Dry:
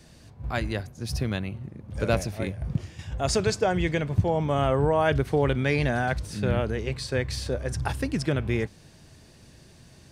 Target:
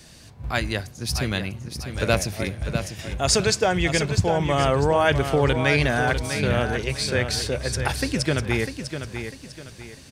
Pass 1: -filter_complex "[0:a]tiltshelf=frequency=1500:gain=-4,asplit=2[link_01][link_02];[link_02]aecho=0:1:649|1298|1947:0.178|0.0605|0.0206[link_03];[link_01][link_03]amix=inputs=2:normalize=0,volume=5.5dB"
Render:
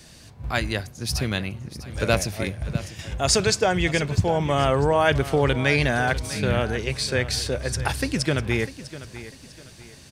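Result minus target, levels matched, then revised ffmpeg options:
echo-to-direct −6.5 dB
-filter_complex "[0:a]tiltshelf=frequency=1500:gain=-4,asplit=2[link_01][link_02];[link_02]aecho=0:1:649|1298|1947|2596:0.376|0.128|0.0434|0.0148[link_03];[link_01][link_03]amix=inputs=2:normalize=0,volume=5.5dB"

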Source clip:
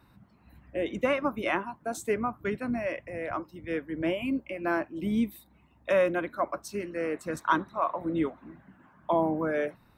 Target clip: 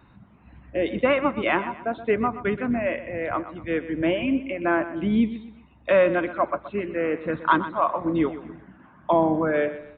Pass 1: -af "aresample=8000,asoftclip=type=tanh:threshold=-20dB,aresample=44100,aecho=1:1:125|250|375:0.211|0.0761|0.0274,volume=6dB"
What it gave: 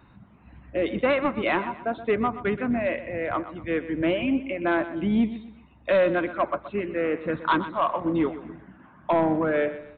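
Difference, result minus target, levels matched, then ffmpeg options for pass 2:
soft clipping: distortion +18 dB
-af "aresample=8000,asoftclip=type=tanh:threshold=-8dB,aresample=44100,aecho=1:1:125|250|375:0.211|0.0761|0.0274,volume=6dB"

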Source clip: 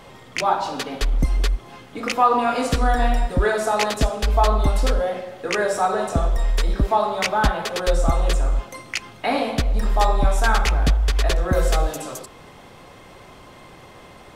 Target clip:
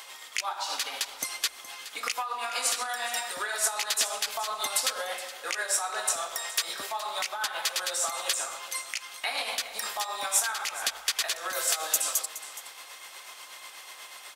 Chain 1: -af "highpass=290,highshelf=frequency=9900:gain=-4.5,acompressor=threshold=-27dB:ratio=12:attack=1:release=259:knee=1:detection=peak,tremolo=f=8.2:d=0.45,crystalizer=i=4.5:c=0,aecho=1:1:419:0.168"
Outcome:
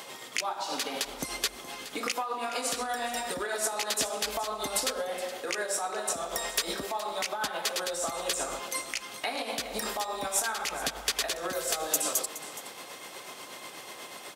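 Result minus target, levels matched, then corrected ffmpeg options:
250 Hz band +16.0 dB
-af "highpass=1000,highshelf=frequency=9900:gain=-4.5,acompressor=threshold=-27dB:ratio=12:attack=1:release=259:knee=1:detection=peak,tremolo=f=8.2:d=0.45,crystalizer=i=4.5:c=0,aecho=1:1:419:0.168"

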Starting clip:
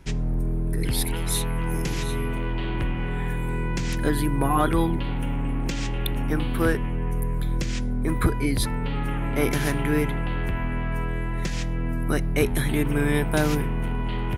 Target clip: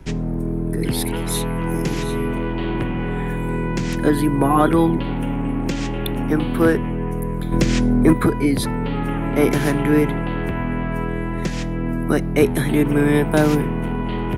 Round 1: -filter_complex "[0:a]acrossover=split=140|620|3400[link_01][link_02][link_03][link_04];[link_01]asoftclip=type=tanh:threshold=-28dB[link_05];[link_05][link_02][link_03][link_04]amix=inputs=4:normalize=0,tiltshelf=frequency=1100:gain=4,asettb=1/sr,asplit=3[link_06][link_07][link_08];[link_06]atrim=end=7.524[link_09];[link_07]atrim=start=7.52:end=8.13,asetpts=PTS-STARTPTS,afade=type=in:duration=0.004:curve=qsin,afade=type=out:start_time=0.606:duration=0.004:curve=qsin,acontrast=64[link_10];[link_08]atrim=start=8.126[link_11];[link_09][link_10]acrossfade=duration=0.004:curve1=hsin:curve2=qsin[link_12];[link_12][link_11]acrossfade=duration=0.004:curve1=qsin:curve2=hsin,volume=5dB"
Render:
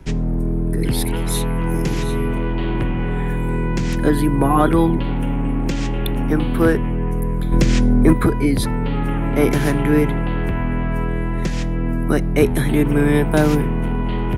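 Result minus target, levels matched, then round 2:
soft clipping: distortion −5 dB
-filter_complex "[0:a]acrossover=split=140|620|3400[link_01][link_02][link_03][link_04];[link_01]asoftclip=type=tanh:threshold=-36.5dB[link_05];[link_05][link_02][link_03][link_04]amix=inputs=4:normalize=0,tiltshelf=frequency=1100:gain=4,asettb=1/sr,asplit=3[link_06][link_07][link_08];[link_06]atrim=end=7.524[link_09];[link_07]atrim=start=7.52:end=8.13,asetpts=PTS-STARTPTS,afade=type=in:duration=0.004:curve=qsin,afade=type=out:start_time=0.606:duration=0.004:curve=qsin,acontrast=64[link_10];[link_08]atrim=start=8.126[link_11];[link_09][link_10]acrossfade=duration=0.004:curve1=hsin:curve2=qsin[link_12];[link_12][link_11]acrossfade=duration=0.004:curve1=qsin:curve2=hsin,volume=5dB"

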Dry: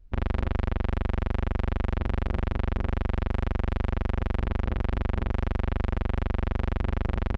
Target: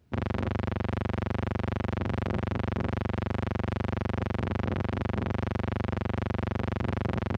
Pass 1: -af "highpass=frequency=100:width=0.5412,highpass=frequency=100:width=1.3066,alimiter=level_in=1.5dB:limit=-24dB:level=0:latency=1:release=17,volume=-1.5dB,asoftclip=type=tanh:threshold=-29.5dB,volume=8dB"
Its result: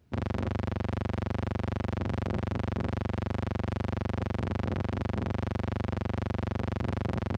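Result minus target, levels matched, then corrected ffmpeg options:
soft clipping: distortion +13 dB
-af "highpass=frequency=100:width=0.5412,highpass=frequency=100:width=1.3066,alimiter=level_in=1.5dB:limit=-24dB:level=0:latency=1:release=17,volume=-1.5dB,asoftclip=type=tanh:threshold=-21.5dB,volume=8dB"

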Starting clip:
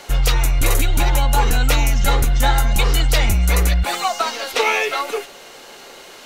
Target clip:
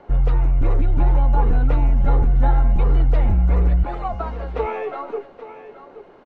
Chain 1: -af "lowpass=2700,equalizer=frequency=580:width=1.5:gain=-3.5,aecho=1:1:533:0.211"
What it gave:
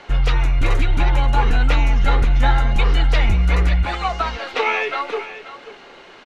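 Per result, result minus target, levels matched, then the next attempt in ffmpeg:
2,000 Hz band +14.0 dB; echo 293 ms early
-af "lowpass=760,equalizer=frequency=580:width=1.5:gain=-3.5,aecho=1:1:533:0.211"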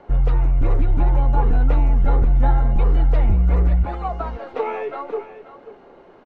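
echo 293 ms early
-af "lowpass=760,equalizer=frequency=580:width=1.5:gain=-3.5,aecho=1:1:826:0.211"

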